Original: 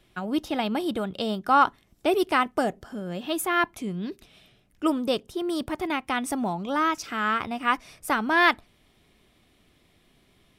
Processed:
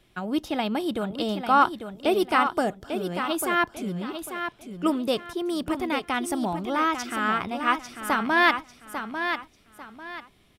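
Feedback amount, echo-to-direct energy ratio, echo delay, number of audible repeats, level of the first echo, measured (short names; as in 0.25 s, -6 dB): 29%, -7.5 dB, 0.846 s, 3, -8.0 dB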